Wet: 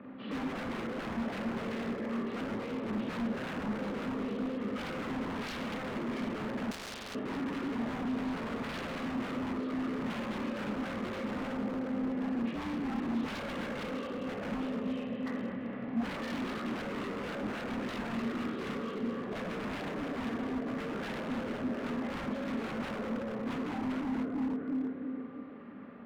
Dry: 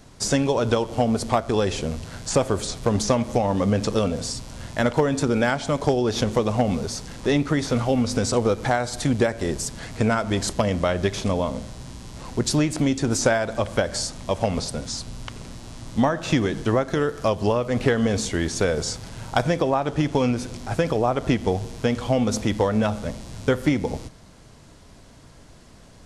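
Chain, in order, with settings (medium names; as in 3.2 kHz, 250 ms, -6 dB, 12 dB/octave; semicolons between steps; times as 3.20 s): frequency axis rescaled in octaves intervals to 83%; reverb removal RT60 0.87 s; two-band feedback delay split 540 Hz, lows 336 ms, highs 234 ms, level -10 dB; saturation -25.5 dBFS, distortion -8 dB; compression 6:1, threshold -34 dBFS, peak gain reduction 7 dB; peak limiter -32.5 dBFS, peak gain reduction 5 dB; cabinet simulation 150–2200 Hz, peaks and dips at 150 Hz -10 dB, 260 Hz +5 dB, 540 Hz +7 dB, 1.2 kHz +8 dB, 1.8 kHz +7 dB; Schroeder reverb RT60 1.1 s, combs from 27 ms, DRR 0 dB; wavefolder -32 dBFS; peaking EQ 220 Hz +13 dB 0.79 oct; 6.71–7.15 s: spectrum-flattening compressor 4:1; trim -3.5 dB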